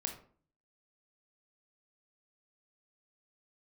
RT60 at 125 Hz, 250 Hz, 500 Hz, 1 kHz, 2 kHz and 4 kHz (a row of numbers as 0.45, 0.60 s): 0.75, 0.60, 0.50, 0.45, 0.35, 0.30 s